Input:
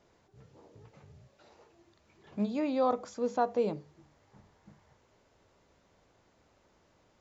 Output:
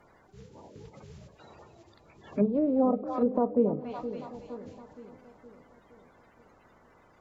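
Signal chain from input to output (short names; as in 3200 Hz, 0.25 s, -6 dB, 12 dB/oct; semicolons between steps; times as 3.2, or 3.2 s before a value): bin magnitudes rounded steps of 30 dB; split-band echo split 530 Hz, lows 0.467 s, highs 0.28 s, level -13 dB; treble ducked by the level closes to 490 Hz, closed at -28.5 dBFS; gain +7.5 dB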